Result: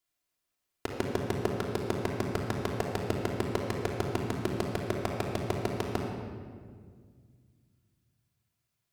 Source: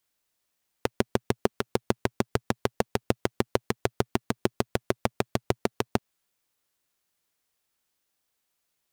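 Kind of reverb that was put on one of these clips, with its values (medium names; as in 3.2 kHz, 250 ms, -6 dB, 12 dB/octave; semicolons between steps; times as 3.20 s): simulated room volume 2900 m³, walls mixed, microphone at 3.1 m; trim -8.5 dB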